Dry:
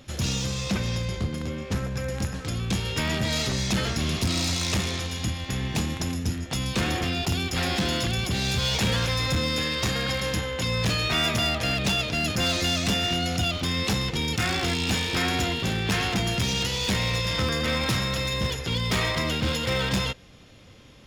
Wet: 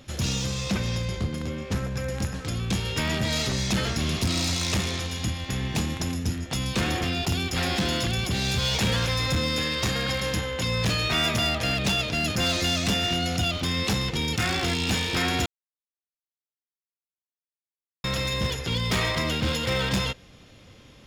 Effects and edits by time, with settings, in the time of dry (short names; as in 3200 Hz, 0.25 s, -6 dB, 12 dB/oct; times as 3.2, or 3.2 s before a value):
15.46–18.04 mute